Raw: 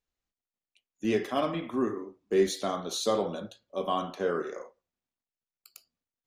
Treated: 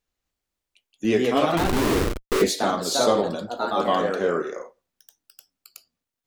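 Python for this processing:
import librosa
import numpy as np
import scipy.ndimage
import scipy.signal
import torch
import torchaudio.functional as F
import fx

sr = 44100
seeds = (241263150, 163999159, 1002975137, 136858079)

y = fx.schmitt(x, sr, flips_db=-36.5, at=(1.57, 2.42))
y = fx.echo_pitch(y, sr, ms=258, semitones=2, count=2, db_per_echo=-3.0)
y = y * 10.0 ** (6.0 / 20.0)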